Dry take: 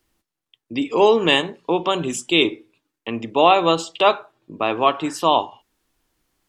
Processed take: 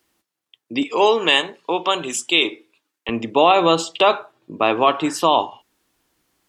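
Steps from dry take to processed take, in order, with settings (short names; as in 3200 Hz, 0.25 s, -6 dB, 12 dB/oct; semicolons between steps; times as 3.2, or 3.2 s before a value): HPF 250 Hz 6 dB/oct, from 0.83 s 760 Hz, from 3.09 s 120 Hz; limiter -7.5 dBFS, peak gain reduction 6 dB; gain +4 dB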